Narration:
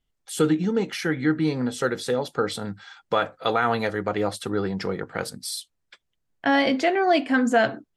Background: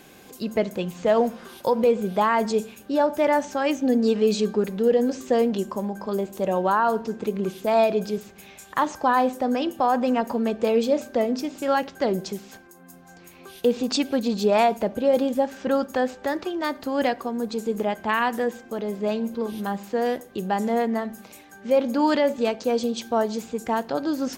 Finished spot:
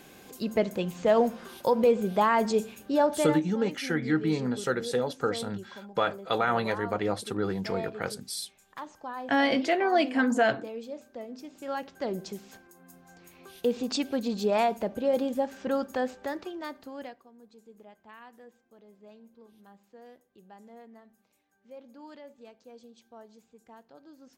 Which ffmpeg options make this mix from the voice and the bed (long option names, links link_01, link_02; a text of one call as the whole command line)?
ffmpeg -i stem1.wav -i stem2.wav -filter_complex "[0:a]adelay=2850,volume=-4dB[link_01];[1:a]volume=9.5dB,afade=type=out:start_time=3.1:duration=0.3:silence=0.16788,afade=type=in:start_time=11.27:duration=1.28:silence=0.251189,afade=type=out:start_time=16.06:duration=1.17:silence=0.0891251[link_02];[link_01][link_02]amix=inputs=2:normalize=0" out.wav